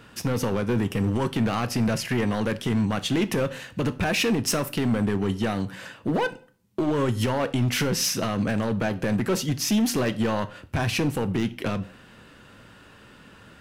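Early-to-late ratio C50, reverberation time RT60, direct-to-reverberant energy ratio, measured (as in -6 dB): 18.0 dB, 0.45 s, 11.0 dB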